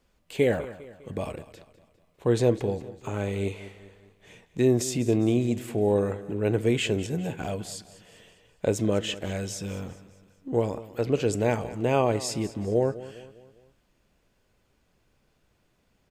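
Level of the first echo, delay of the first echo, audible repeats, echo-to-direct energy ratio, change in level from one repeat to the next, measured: -16.5 dB, 0.202 s, 3, -15.5 dB, -6.5 dB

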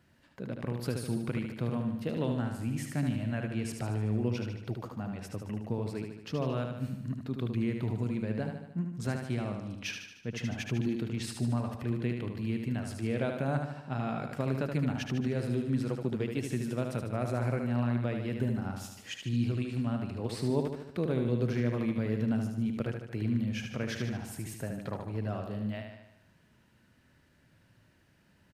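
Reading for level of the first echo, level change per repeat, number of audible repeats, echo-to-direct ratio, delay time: -5.5 dB, -5.0 dB, 6, -4.0 dB, 75 ms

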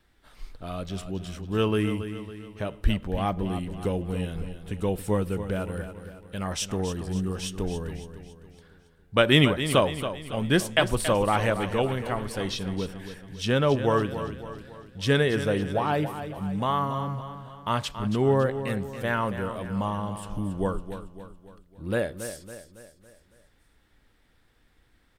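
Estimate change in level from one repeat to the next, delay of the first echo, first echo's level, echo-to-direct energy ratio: -6.5 dB, 0.278 s, -10.5 dB, -9.5 dB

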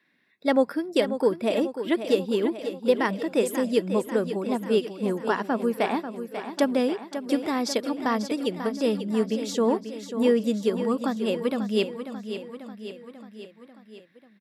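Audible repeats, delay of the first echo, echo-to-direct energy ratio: 5, 0.541 s, -8.0 dB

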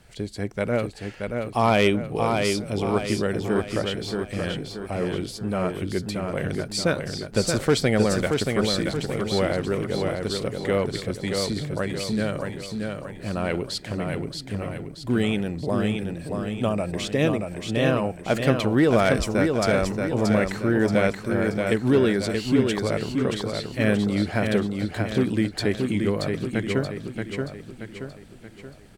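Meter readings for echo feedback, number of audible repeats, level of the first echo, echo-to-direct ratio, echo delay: 46%, 5, -4.5 dB, -3.5 dB, 0.628 s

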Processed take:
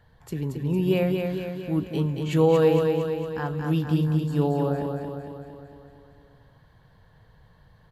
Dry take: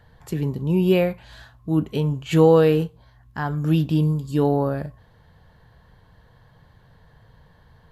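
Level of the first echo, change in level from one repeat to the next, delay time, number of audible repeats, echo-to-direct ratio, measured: -4.5 dB, -4.5 dB, 0.228 s, 7, -2.5 dB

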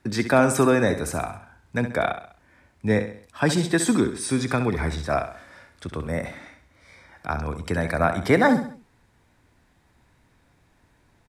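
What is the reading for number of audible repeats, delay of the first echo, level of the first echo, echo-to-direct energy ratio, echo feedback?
4, 66 ms, -10.0 dB, -9.0 dB, 42%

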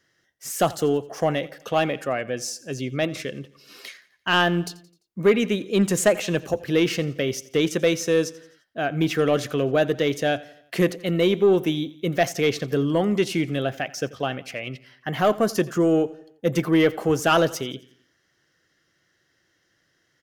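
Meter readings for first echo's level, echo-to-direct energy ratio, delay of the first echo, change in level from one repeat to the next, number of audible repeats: -20.0 dB, -19.0 dB, 86 ms, -6.0 dB, 3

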